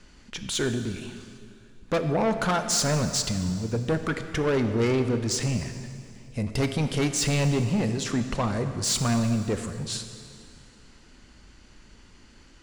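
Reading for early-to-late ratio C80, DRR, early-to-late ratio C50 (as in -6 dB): 9.0 dB, 7.5 dB, 8.5 dB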